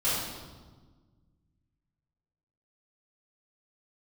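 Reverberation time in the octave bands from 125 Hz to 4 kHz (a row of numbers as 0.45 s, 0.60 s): 2.5 s, 2.1 s, 1.5 s, 1.3 s, 1.0 s, 1.1 s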